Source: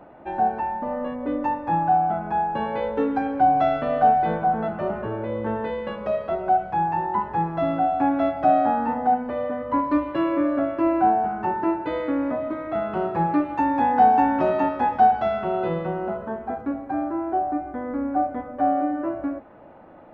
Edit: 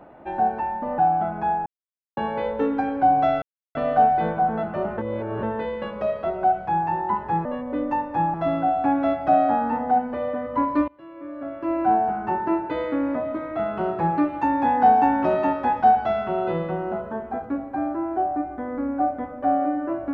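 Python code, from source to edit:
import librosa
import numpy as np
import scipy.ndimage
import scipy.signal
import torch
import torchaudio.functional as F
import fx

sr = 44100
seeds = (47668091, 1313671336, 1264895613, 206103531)

y = fx.edit(x, sr, fx.move(start_s=0.98, length_s=0.89, to_s=7.5),
    fx.insert_silence(at_s=2.55, length_s=0.51),
    fx.insert_silence(at_s=3.8, length_s=0.33),
    fx.reverse_span(start_s=5.03, length_s=0.45),
    fx.fade_in_from(start_s=10.04, length_s=1.07, curve='qua', floor_db=-23.5), tone=tone)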